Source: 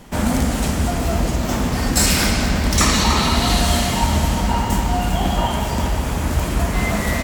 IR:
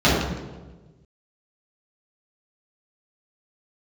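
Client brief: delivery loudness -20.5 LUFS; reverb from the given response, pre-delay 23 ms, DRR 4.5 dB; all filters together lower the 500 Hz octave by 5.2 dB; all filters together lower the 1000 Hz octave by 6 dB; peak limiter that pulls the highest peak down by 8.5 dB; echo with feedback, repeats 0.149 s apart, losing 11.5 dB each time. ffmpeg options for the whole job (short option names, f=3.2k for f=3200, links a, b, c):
-filter_complex "[0:a]equalizer=f=500:t=o:g=-5,equalizer=f=1k:t=o:g=-6,alimiter=limit=-12.5dB:level=0:latency=1,aecho=1:1:149|298|447:0.266|0.0718|0.0194,asplit=2[a][b];[1:a]atrim=start_sample=2205,adelay=23[c];[b][c]afir=irnorm=-1:irlink=0,volume=-27.5dB[d];[a][d]amix=inputs=2:normalize=0,volume=-3.5dB"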